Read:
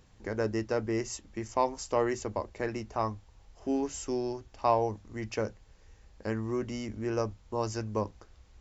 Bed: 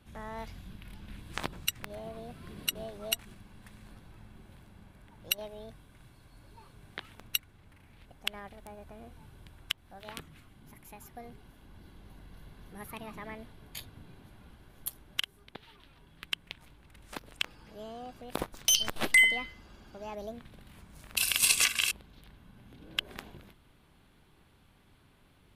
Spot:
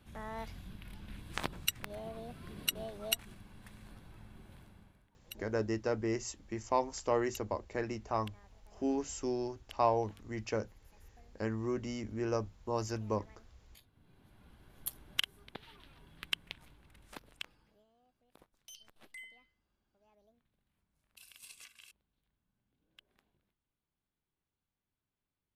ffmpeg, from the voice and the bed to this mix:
-filter_complex "[0:a]adelay=5150,volume=0.708[s0];[1:a]volume=6.68,afade=t=out:st=4.61:d=0.49:silence=0.141254,afade=t=in:st=13.93:d=1.18:silence=0.125893,afade=t=out:st=16.21:d=1.64:silence=0.0375837[s1];[s0][s1]amix=inputs=2:normalize=0"

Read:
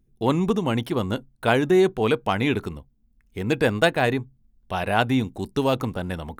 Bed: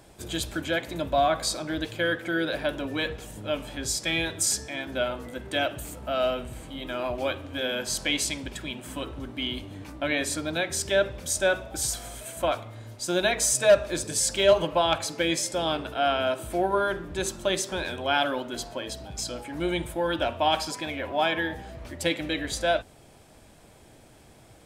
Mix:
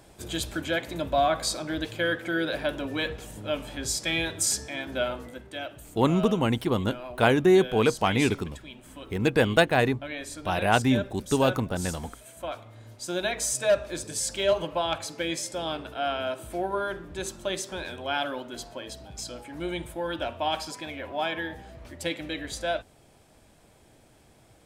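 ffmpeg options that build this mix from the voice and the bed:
-filter_complex "[0:a]adelay=5750,volume=0.891[s0];[1:a]volume=1.68,afade=t=out:st=5.13:d=0.37:silence=0.354813,afade=t=in:st=12.43:d=0.48:silence=0.562341[s1];[s0][s1]amix=inputs=2:normalize=0"

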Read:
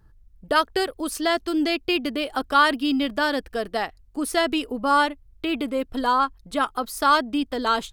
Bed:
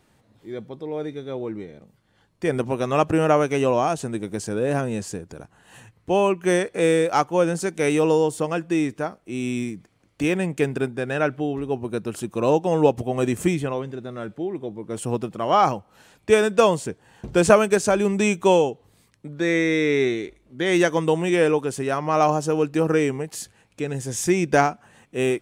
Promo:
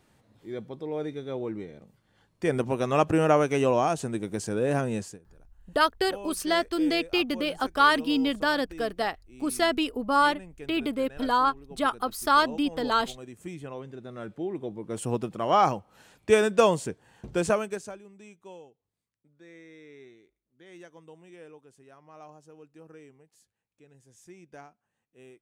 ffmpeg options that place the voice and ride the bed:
-filter_complex "[0:a]adelay=5250,volume=0.75[s0];[1:a]volume=5.62,afade=t=out:st=4.97:d=0.22:silence=0.11885,afade=t=in:st=13.4:d=1.19:silence=0.125893,afade=t=out:st=16.87:d=1.14:silence=0.0501187[s1];[s0][s1]amix=inputs=2:normalize=0"

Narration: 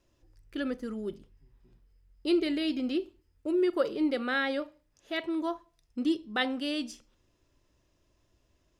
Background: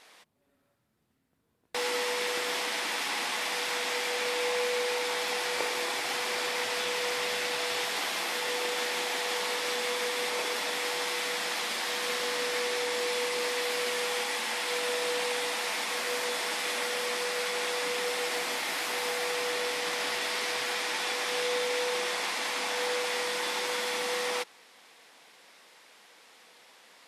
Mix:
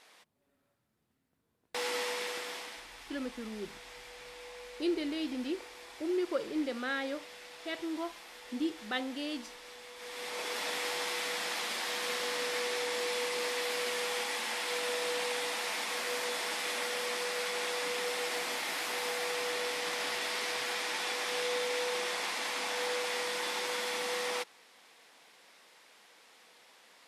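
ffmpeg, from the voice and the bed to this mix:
-filter_complex "[0:a]adelay=2550,volume=0.531[s0];[1:a]volume=3.55,afade=t=out:st=2.01:d=0.86:silence=0.188365,afade=t=in:st=9.95:d=0.72:silence=0.177828[s1];[s0][s1]amix=inputs=2:normalize=0"

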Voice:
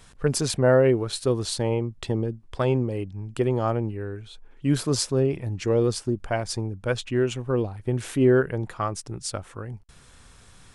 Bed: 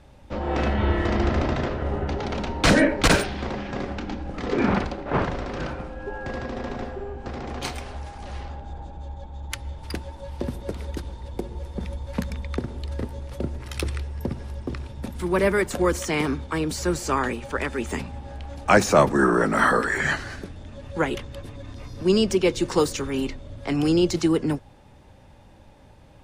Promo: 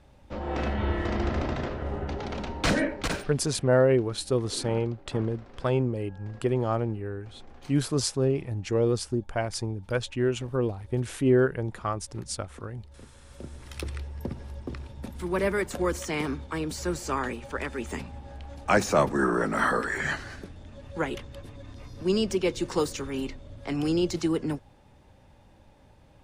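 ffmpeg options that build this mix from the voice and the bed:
-filter_complex "[0:a]adelay=3050,volume=0.75[s0];[1:a]volume=2.82,afade=t=out:st=2.51:d=0.89:silence=0.188365,afade=t=in:st=13.18:d=0.84:silence=0.188365[s1];[s0][s1]amix=inputs=2:normalize=0"

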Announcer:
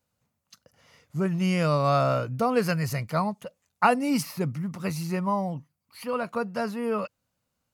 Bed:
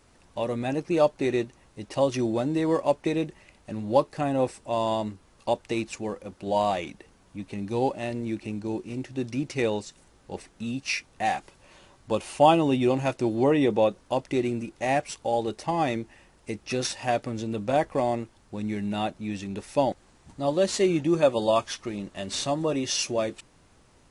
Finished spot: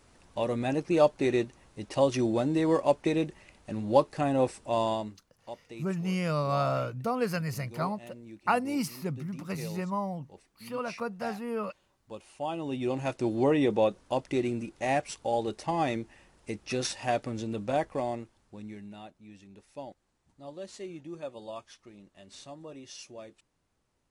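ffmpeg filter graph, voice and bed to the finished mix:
-filter_complex "[0:a]adelay=4650,volume=0.531[s0];[1:a]volume=4.22,afade=t=out:st=4.79:d=0.45:silence=0.16788,afade=t=in:st=12.49:d=0.82:silence=0.211349,afade=t=out:st=17.4:d=1.62:silence=0.16788[s1];[s0][s1]amix=inputs=2:normalize=0"

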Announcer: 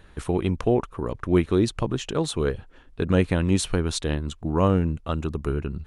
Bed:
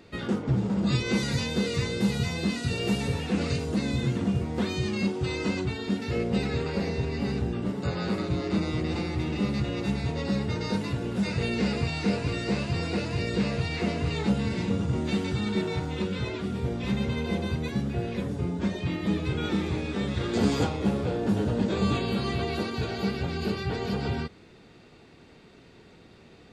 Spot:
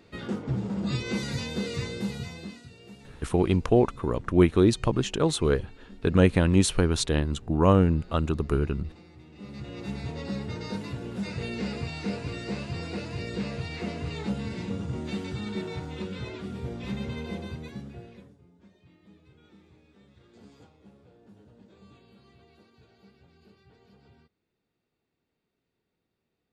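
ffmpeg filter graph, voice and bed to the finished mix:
-filter_complex "[0:a]adelay=3050,volume=1.12[s0];[1:a]volume=3.98,afade=t=out:st=1.82:d=0.89:silence=0.133352,afade=t=in:st=9.33:d=0.67:silence=0.158489,afade=t=out:st=17.18:d=1.21:silence=0.0668344[s1];[s0][s1]amix=inputs=2:normalize=0"

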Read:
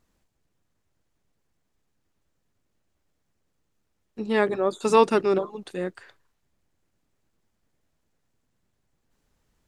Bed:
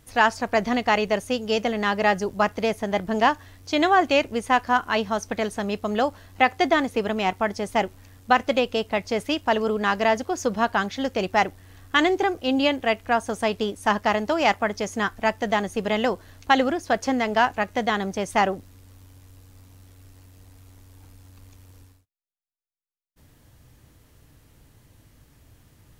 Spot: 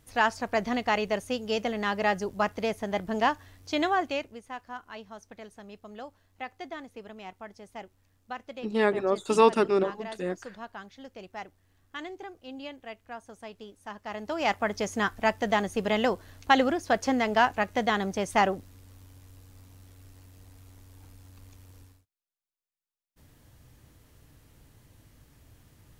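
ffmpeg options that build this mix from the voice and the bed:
-filter_complex "[0:a]adelay=4450,volume=0.794[s0];[1:a]volume=3.76,afade=t=out:st=3.75:d=0.66:silence=0.199526,afade=t=in:st=14.03:d=0.77:silence=0.141254[s1];[s0][s1]amix=inputs=2:normalize=0"

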